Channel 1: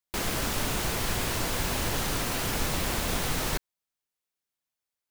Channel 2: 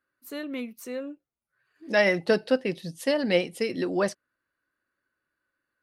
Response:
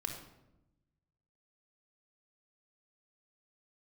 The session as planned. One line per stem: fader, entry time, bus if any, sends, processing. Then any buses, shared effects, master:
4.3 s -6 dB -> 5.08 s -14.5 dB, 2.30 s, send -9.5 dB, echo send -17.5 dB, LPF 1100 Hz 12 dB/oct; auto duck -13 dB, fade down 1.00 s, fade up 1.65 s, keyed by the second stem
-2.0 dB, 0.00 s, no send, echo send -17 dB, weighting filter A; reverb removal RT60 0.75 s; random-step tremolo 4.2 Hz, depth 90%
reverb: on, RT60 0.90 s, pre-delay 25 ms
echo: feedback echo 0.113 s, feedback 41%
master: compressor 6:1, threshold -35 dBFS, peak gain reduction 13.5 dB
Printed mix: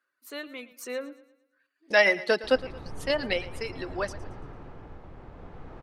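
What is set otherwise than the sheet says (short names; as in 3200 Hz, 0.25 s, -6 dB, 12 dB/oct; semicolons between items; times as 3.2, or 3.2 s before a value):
stem 2 -2.0 dB -> +4.5 dB; master: missing compressor 6:1, threshold -35 dBFS, peak gain reduction 13.5 dB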